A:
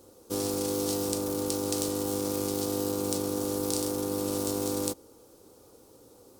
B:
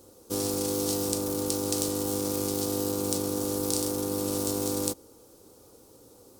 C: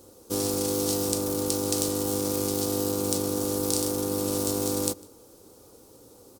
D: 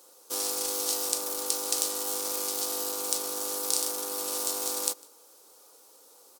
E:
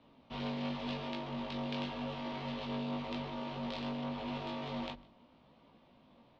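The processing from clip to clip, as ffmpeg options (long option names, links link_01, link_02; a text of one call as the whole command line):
ffmpeg -i in.wav -af "bass=frequency=250:gain=2,treble=frequency=4000:gain=3" out.wav
ffmpeg -i in.wav -filter_complex "[0:a]asplit=2[link_01][link_02];[link_02]adelay=151.6,volume=-23dB,highshelf=frequency=4000:gain=-3.41[link_03];[link_01][link_03]amix=inputs=2:normalize=0,volume=2dB" out.wav
ffmpeg -i in.wav -af "highpass=820,volume=1dB" out.wav
ffmpeg -i in.wav -af "flanger=delay=16.5:depth=3.8:speed=0.88,bandreject=frequency=50:width_type=h:width=6,bandreject=frequency=100:width_type=h:width=6,bandreject=frequency=150:width_type=h:width=6,bandreject=frequency=200:width_type=h:width=6,bandreject=frequency=250:width_type=h:width=6,bandreject=frequency=300:width_type=h:width=6,bandreject=frequency=350:width_type=h:width=6,highpass=frequency=220:width_type=q:width=0.5412,highpass=frequency=220:width_type=q:width=1.307,lowpass=frequency=3400:width_type=q:width=0.5176,lowpass=frequency=3400:width_type=q:width=0.7071,lowpass=frequency=3400:width_type=q:width=1.932,afreqshift=-260,volume=2.5dB" out.wav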